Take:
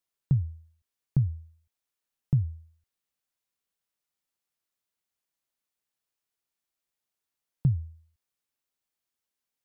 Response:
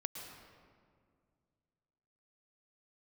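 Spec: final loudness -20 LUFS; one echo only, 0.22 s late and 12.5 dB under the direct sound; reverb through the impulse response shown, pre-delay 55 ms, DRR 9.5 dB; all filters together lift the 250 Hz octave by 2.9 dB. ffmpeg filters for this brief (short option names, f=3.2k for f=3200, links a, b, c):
-filter_complex "[0:a]equalizer=f=250:t=o:g=7.5,aecho=1:1:220:0.237,asplit=2[a][b];[1:a]atrim=start_sample=2205,adelay=55[c];[b][c]afir=irnorm=-1:irlink=0,volume=-8.5dB[d];[a][d]amix=inputs=2:normalize=0,volume=9dB"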